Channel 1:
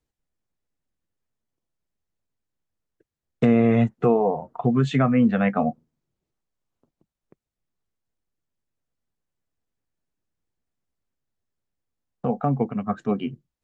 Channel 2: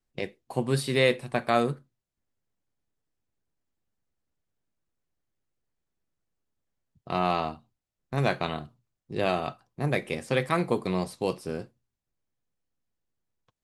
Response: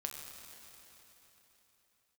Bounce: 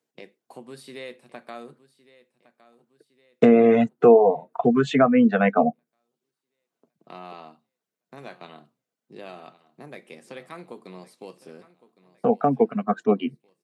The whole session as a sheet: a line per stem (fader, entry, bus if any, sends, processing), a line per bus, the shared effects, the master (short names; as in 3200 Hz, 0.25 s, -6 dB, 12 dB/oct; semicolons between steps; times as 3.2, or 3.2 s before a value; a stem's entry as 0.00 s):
+2.5 dB, 0.00 s, no send, no echo send, reverb removal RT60 0.61 s; small resonant body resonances 450/660/1500 Hz, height 7 dB
-7.0 dB, 0.00 s, no send, echo send -18 dB, compressor 2:1, threshold -34 dBFS, peak gain reduction 9.5 dB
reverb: off
echo: feedback echo 1.111 s, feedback 47%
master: HPF 180 Hz 24 dB/oct